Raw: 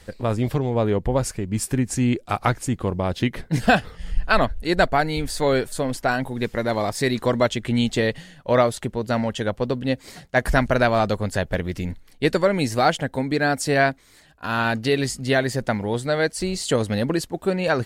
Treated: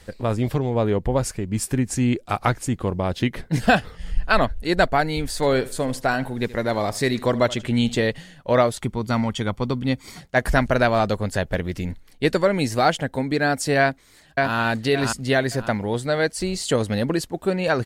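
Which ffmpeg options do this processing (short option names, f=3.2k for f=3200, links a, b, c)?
-filter_complex "[0:a]asettb=1/sr,asplit=3[a][b][c];[a]atrim=end=5.354[d];[b]atrim=start=5.35:end=7.95,asetpts=PTS-STARTPTS,afade=t=in:d=0.004:c=qsin,afade=t=out:st=2.596:d=0.004:c=qsin,aecho=1:1:76|152|228:0.119|0.0357|0.0107,atrim=end_sample=114660[e];[c]atrim=start=7.946[f];[d][e]acrossfade=d=0.004:c1=hsin:c2=qsin[g];[g][f]acrossfade=d=0.004:c1=qsin:c2=hsin,asettb=1/sr,asplit=3[h][i][j];[h]atrim=end=8.804[k];[i]atrim=start=8.8:end=10.21,asetpts=PTS-STARTPTS,afade=t=in:d=0.004:c=qsin,afade=t=out:st=1.406:d=0.004:c=qsin,aecho=1:1:0.9:0.49,atrim=end_sample=62181[l];[j]atrim=start=10.206[m];[k][l]acrossfade=d=0.004:c1=hsin:c2=qsin[n];[n][m]acrossfade=d=0.004:c1=qsin:c2=hsin,asplit=2[o][p];[p]afade=t=in:st=13.8:d=0.01,afade=t=out:st=14.55:d=0.01,aecho=0:1:570|1140|1710|2280:0.794328|0.238298|0.0714895|0.0214469[q];[o][q]amix=inputs=2:normalize=0"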